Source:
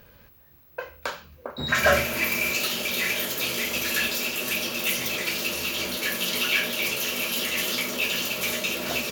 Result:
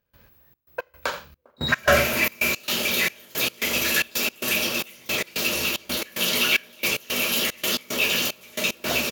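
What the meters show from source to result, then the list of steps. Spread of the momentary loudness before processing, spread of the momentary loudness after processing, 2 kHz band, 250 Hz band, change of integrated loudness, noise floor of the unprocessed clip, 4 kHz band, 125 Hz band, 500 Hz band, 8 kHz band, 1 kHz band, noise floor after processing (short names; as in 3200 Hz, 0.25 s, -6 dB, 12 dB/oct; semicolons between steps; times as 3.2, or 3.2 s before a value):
12 LU, 11 LU, +1.5 dB, +2.0 dB, +1.5 dB, -54 dBFS, +2.0 dB, +2.0 dB, +2.0 dB, +1.5 dB, +1.5 dB, -62 dBFS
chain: sample leveller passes 1; echo 83 ms -13.5 dB; step gate ".xxx.x.xxx..x" 112 bpm -24 dB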